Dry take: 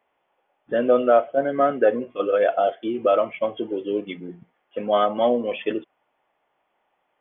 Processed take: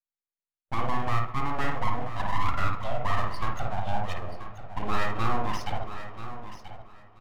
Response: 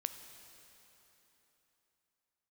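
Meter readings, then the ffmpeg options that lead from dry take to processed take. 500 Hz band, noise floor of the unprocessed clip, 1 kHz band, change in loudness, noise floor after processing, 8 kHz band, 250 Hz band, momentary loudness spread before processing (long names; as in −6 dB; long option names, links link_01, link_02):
−18.0 dB, −73 dBFS, −3.5 dB, −9.5 dB, below −85 dBFS, can't be measured, −10.0 dB, 13 LU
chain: -filter_complex "[0:a]agate=range=-35dB:threshold=-43dB:ratio=16:detection=peak,equalizer=frequency=900:width=4.5:gain=-8.5,alimiter=limit=-15dB:level=0:latency=1:release=235,aeval=exprs='abs(val(0))':channel_layout=same,aecho=1:1:983|1966:0.251|0.0452,asplit=2[link_01][link_02];[1:a]atrim=start_sample=2205,lowpass=2100,adelay=53[link_03];[link_02][link_03]afir=irnorm=-1:irlink=0,volume=0dB[link_04];[link_01][link_04]amix=inputs=2:normalize=0,volume=-2dB"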